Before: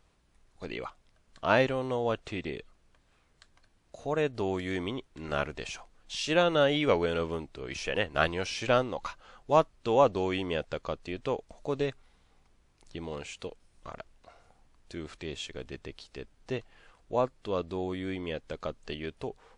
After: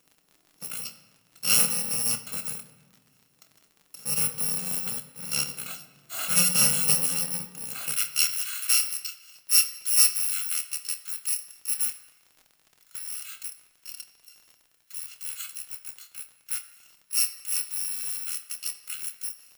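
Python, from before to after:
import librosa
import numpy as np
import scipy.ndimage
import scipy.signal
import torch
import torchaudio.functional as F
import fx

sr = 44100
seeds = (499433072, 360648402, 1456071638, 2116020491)

y = fx.bit_reversed(x, sr, seeds[0], block=128)
y = fx.highpass(y, sr, hz=fx.steps((0.0, 160.0), (7.92, 1400.0)), slope=24)
y = fx.dmg_crackle(y, sr, seeds[1], per_s=42.0, level_db=-44.0)
y = fx.doubler(y, sr, ms=27.0, db=-10.5)
y = fx.room_shoebox(y, sr, seeds[2], volume_m3=1300.0, walls='mixed', distance_m=0.59)
y = y * 10.0 ** (2.5 / 20.0)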